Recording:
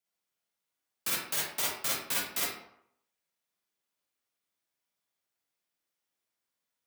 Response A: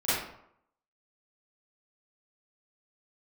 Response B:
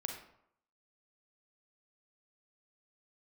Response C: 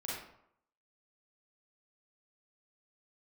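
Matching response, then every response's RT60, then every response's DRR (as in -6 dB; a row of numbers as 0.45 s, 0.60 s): C; 0.75 s, 0.70 s, 0.75 s; -15.0 dB, 3.0 dB, -6.5 dB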